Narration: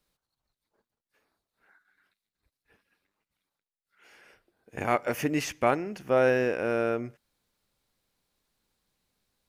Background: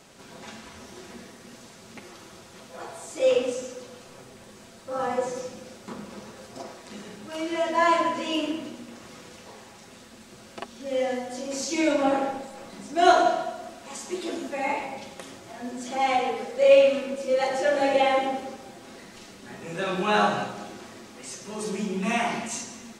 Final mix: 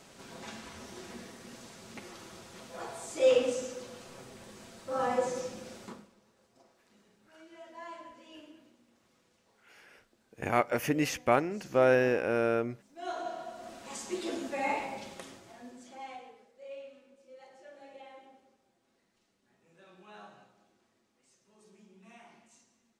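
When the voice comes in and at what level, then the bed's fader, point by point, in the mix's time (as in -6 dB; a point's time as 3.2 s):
5.65 s, -1.0 dB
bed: 5.84 s -2.5 dB
6.15 s -24.5 dB
12.95 s -24.5 dB
13.75 s -4 dB
15.16 s -4 dB
16.53 s -29.5 dB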